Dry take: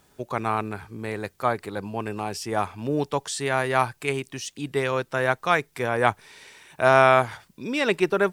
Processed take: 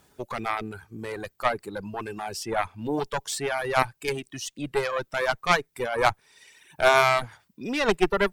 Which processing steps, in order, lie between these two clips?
harmonic generator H 4 −17 dB, 8 −20 dB, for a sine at −2 dBFS
reverb reduction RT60 1.1 s

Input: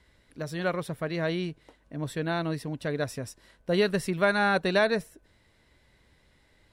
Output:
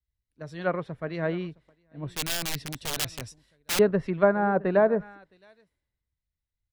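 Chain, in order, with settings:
on a send: single-tap delay 665 ms −19.5 dB
on the sum: treble cut that deepens with the level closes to 960 Hz, closed at −20.5 dBFS
0:02.08–0:03.79: wrap-around overflow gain 24.5 dB
multiband upward and downward expander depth 100%

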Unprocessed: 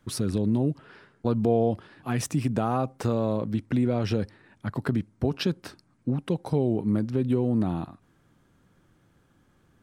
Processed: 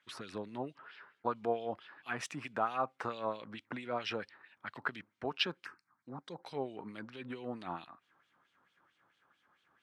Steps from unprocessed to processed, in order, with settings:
0:05.65–0:06.43: phaser swept by the level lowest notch 430 Hz, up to 2,800 Hz, full sweep at −27.5 dBFS
auto-filter band-pass sine 4.5 Hz 1,000–3,400 Hz
level +4 dB

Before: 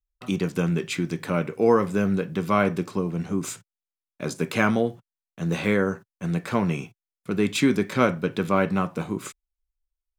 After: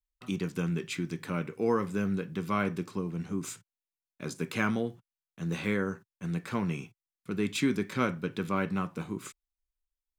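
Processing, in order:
parametric band 630 Hz −6.5 dB 0.81 octaves
level −6.5 dB

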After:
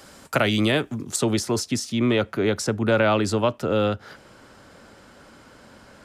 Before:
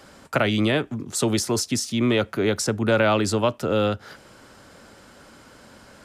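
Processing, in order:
high-shelf EQ 5,000 Hz +8 dB, from 0:01.16 −5 dB

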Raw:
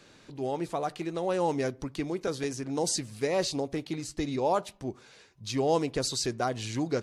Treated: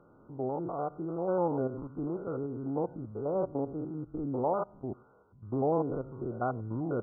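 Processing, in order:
spectrum averaged block by block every 100 ms
linear-phase brick-wall low-pass 1,500 Hz

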